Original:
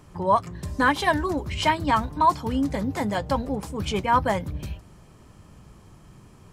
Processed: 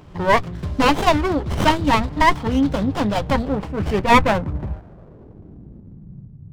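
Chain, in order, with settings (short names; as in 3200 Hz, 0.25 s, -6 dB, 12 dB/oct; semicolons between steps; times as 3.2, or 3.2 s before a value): low-pass sweep 3600 Hz -> 140 Hz, 3.39–6.38; running maximum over 17 samples; gain +6.5 dB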